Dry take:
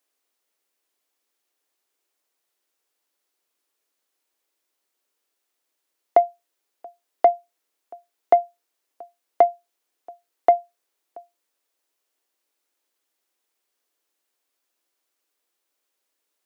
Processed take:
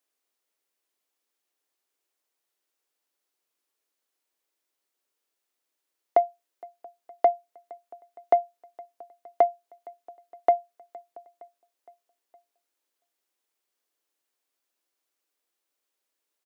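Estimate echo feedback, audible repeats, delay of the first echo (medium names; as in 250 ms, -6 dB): 58%, 3, 464 ms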